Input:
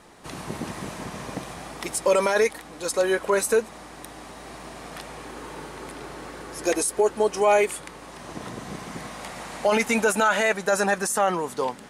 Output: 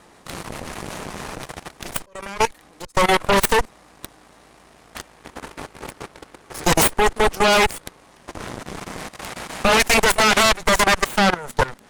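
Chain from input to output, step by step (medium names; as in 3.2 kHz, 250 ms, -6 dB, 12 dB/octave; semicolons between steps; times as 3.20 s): 1.97–2.95 s: slow attack 731 ms; Chebyshev shaper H 4 -8 dB, 8 -8 dB, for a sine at -9 dBFS; level held to a coarse grid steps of 18 dB; trim +3.5 dB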